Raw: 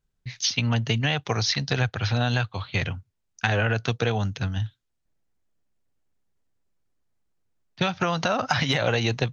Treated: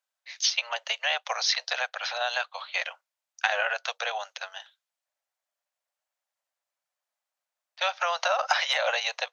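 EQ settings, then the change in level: steep high-pass 550 Hz 72 dB/oct; 0.0 dB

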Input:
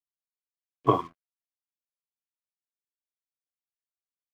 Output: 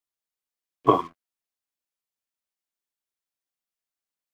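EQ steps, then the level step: bell 110 Hz -8 dB 0.77 oct; +4.0 dB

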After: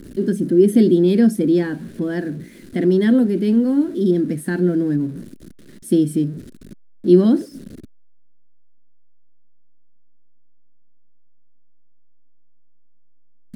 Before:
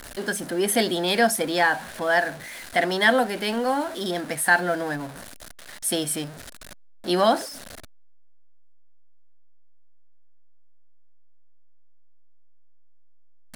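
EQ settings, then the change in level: bell 180 Hz +11 dB 1.4 oct; resonant low shelf 520 Hz +13 dB, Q 3; -11.0 dB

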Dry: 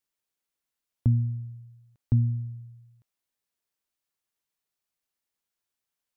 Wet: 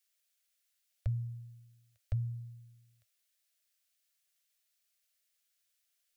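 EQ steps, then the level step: elliptic band-stop 110–600 Hz; low shelf 320 Hz -8.5 dB; fixed phaser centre 380 Hz, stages 4; +8.0 dB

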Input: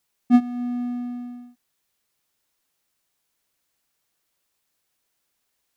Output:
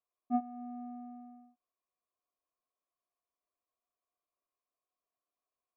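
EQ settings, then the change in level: vocal tract filter a; fixed phaser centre 340 Hz, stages 4; +11.0 dB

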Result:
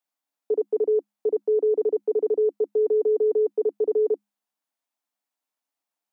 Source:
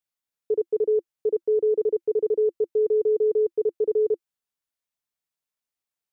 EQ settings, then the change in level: rippled Chebyshev high-pass 200 Hz, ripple 9 dB; +9.0 dB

